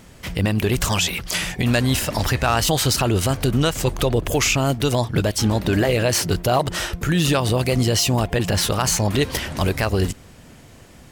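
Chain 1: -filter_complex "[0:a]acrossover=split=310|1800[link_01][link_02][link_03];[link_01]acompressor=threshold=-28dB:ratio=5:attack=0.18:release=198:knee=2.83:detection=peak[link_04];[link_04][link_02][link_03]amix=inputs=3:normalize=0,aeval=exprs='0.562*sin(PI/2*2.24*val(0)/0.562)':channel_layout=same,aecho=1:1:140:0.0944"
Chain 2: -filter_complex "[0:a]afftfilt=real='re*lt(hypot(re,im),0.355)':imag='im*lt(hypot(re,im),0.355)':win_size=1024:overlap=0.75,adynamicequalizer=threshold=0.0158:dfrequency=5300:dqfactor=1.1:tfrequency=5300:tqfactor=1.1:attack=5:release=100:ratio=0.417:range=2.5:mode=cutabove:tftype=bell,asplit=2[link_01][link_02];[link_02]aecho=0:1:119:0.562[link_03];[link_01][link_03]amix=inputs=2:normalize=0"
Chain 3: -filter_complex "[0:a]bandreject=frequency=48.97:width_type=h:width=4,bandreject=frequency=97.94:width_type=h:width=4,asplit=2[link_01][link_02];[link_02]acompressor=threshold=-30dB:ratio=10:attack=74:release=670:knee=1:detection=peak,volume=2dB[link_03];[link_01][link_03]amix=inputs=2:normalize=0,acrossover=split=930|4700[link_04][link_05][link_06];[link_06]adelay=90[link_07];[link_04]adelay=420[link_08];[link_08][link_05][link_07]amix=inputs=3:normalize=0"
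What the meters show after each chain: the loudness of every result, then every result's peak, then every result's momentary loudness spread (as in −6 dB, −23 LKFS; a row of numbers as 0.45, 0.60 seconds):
−13.0, −24.0, −18.5 LKFS; −4.0, −8.0, −3.0 dBFS; 5, 5, 5 LU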